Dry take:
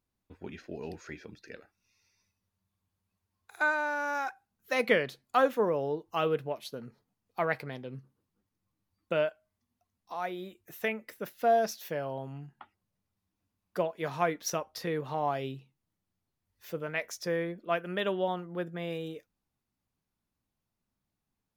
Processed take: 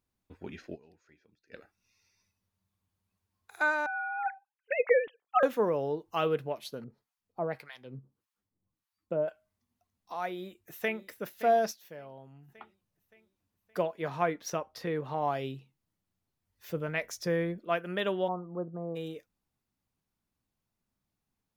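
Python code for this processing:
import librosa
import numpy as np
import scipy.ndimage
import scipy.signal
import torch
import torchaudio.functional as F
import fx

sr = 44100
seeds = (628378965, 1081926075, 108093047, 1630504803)

y = fx.sine_speech(x, sr, at=(3.86, 5.43))
y = fx.harmonic_tremolo(y, sr, hz=1.7, depth_pct=100, crossover_hz=910.0, at=(6.84, 9.28))
y = fx.echo_throw(y, sr, start_s=10.3, length_s=0.72, ms=570, feedback_pct=50, wet_db=-14.0)
y = fx.high_shelf(y, sr, hz=3800.0, db=-8.0, at=(13.96, 15.22))
y = fx.low_shelf(y, sr, hz=170.0, db=10.5, at=(16.69, 17.58))
y = fx.cheby1_lowpass(y, sr, hz=1200.0, order=5, at=(18.27, 18.95), fade=0.02)
y = fx.edit(y, sr, fx.fade_down_up(start_s=0.74, length_s=0.8, db=-20.5, fade_s=0.16, curve='exp'),
    fx.fade_down_up(start_s=11.71, length_s=0.79, db=-11.5, fade_s=0.13, curve='exp'), tone=tone)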